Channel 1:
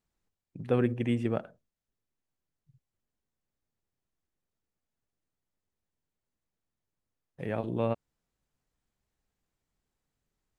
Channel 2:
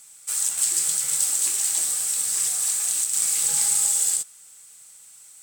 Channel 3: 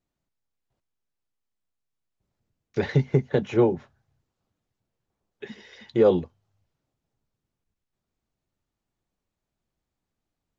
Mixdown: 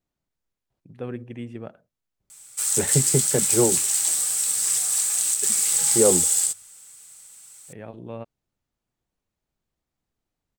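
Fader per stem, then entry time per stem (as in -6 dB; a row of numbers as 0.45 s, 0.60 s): -6.5 dB, +1.0 dB, -1.0 dB; 0.30 s, 2.30 s, 0.00 s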